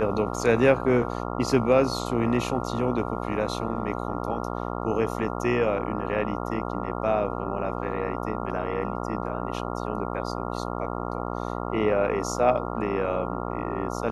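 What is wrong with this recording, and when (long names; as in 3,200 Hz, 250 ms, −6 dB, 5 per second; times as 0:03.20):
mains buzz 60 Hz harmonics 23 −31 dBFS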